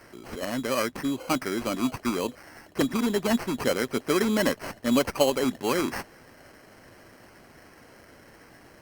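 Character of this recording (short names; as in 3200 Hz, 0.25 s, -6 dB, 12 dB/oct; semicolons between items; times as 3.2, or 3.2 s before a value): aliases and images of a low sample rate 3600 Hz, jitter 0%; Opus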